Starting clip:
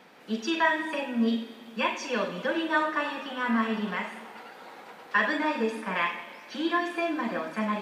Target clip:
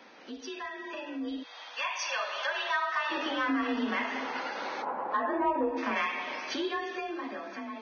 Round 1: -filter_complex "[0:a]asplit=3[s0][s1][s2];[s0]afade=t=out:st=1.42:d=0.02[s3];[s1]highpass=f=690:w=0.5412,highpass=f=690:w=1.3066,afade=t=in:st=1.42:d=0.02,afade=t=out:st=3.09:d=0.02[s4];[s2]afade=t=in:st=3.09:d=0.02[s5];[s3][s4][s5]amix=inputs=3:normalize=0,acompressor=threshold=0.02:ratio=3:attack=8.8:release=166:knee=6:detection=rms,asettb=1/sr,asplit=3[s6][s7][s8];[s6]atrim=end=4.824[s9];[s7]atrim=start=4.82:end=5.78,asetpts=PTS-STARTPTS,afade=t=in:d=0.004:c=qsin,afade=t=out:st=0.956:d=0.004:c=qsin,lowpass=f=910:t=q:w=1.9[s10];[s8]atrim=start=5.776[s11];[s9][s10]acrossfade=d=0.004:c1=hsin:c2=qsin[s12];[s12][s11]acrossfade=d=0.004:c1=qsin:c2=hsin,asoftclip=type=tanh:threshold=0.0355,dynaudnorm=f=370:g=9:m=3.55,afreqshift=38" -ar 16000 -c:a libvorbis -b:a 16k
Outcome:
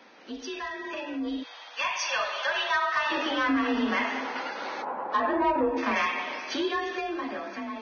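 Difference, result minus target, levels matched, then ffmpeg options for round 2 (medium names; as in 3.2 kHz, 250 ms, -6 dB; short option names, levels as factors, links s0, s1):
compression: peak gain reduction -5 dB
-filter_complex "[0:a]asplit=3[s0][s1][s2];[s0]afade=t=out:st=1.42:d=0.02[s3];[s1]highpass=f=690:w=0.5412,highpass=f=690:w=1.3066,afade=t=in:st=1.42:d=0.02,afade=t=out:st=3.09:d=0.02[s4];[s2]afade=t=in:st=3.09:d=0.02[s5];[s3][s4][s5]amix=inputs=3:normalize=0,acompressor=threshold=0.00841:ratio=3:attack=8.8:release=166:knee=6:detection=rms,asettb=1/sr,asplit=3[s6][s7][s8];[s6]atrim=end=4.824[s9];[s7]atrim=start=4.82:end=5.78,asetpts=PTS-STARTPTS,afade=t=in:d=0.004:c=qsin,afade=t=out:st=0.956:d=0.004:c=qsin,lowpass=f=910:t=q:w=1.9[s10];[s8]atrim=start=5.776[s11];[s9][s10]acrossfade=d=0.004:c1=hsin:c2=qsin[s12];[s12][s11]acrossfade=d=0.004:c1=qsin:c2=hsin,asoftclip=type=tanh:threshold=0.0355,dynaudnorm=f=370:g=9:m=3.55,afreqshift=38" -ar 16000 -c:a libvorbis -b:a 16k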